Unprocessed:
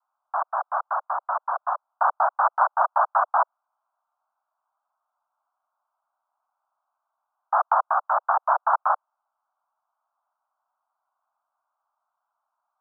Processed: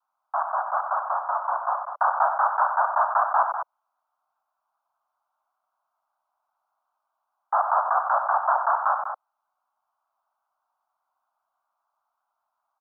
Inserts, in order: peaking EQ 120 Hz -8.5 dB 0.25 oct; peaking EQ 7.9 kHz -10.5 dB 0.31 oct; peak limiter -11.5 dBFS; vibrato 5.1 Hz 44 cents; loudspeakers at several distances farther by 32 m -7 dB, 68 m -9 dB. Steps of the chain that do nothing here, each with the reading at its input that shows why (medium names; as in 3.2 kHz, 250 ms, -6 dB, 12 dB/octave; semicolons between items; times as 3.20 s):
peaking EQ 120 Hz: input has nothing below 510 Hz; peaking EQ 7.9 kHz: input has nothing above 1.7 kHz